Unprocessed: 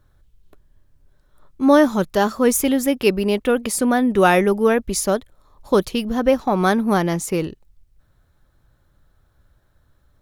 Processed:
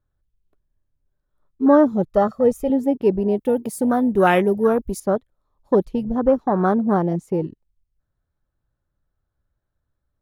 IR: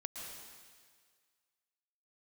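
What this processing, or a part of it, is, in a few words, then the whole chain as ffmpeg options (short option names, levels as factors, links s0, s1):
behind a face mask: -filter_complex "[0:a]afwtdn=0.1,asettb=1/sr,asplit=3[s0][s1][s2];[s0]atrim=end=2.064[s3];[s1]atrim=start=2.06:end=2.7,asetpts=PTS-STARTPTS,afade=t=in:d=0.004:c=qsin,afade=t=out:st=0.636:d=0.004:c=qsin,aecho=1:1:1.6:0.66,atrim=end_sample=28224[s4];[s2]atrim=start=2.696[s5];[s3][s4]acrossfade=d=0.004:c1=hsin:c2=qsin[s6];[s6][s5]acrossfade=d=0.004:c1=qsin:c2=hsin,asettb=1/sr,asplit=3[s7][s8][s9];[s7]atrim=end=3.364[s10];[s8]atrim=start=3.36:end=5,asetpts=PTS-STARTPTS,afade=t=in:d=0.004:c=qsin,afade=t=out:st=1.636:d=0.004:c=qsin,aemphasis=mode=production:type=75fm[s11];[s9]atrim=start=4.996[s12];[s10][s11]acrossfade=d=0.004:c1=hsin:c2=qsin[s13];[s13][s12]acrossfade=d=0.004:c1=qsin:c2=hsin,highshelf=f=2400:g=-7.5"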